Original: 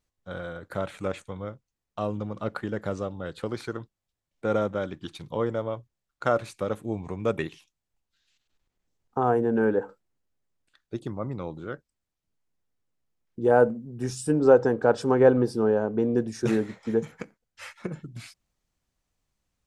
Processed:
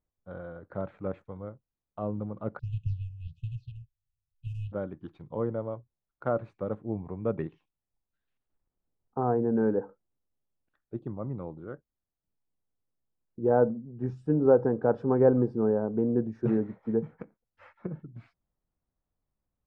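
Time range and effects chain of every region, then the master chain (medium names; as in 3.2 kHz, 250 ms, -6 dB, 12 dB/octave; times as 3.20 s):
2.59–4.72 s: square wave that keeps the level + brick-wall FIR band-stop 150–2500 Hz + phase shifter stages 6, 1.4 Hz, lowest notch 270–1500 Hz
whole clip: dynamic bell 160 Hz, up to +5 dB, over -35 dBFS, Q 0.85; low-pass 1.1 kHz 12 dB/octave; trim -4.5 dB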